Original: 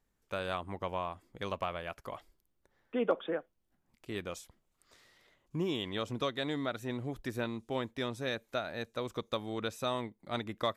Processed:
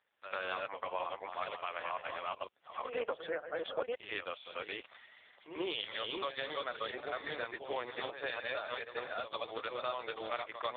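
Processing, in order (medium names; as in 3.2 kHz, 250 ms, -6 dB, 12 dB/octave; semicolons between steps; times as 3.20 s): chunks repeated in reverse 494 ms, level 0 dB; high-pass 430 Hz 24 dB/octave; tilt shelf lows -3.5 dB; compression 4:1, threshold -43 dBFS, peak gain reduction 14.5 dB; reverse echo 91 ms -10 dB; trim +9.5 dB; AMR-NB 5.15 kbps 8 kHz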